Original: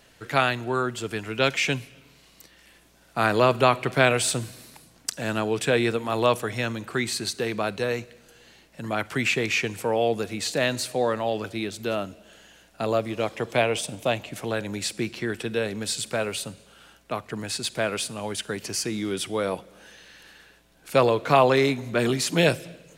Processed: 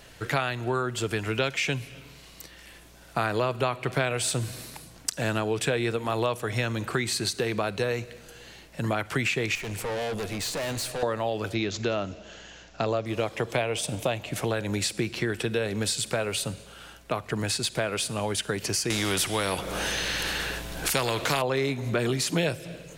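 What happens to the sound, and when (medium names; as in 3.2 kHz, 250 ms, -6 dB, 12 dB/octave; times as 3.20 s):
9.55–11.03 s: valve stage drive 34 dB, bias 0.45
11.54–13.06 s: careless resampling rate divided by 3×, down none, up filtered
18.90–21.42 s: spectrum-flattening compressor 2:1
whole clip: peaking EQ 230 Hz -4 dB 0.68 oct; compression 4:1, threshold -31 dBFS; bass shelf 170 Hz +5 dB; trim +5.5 dB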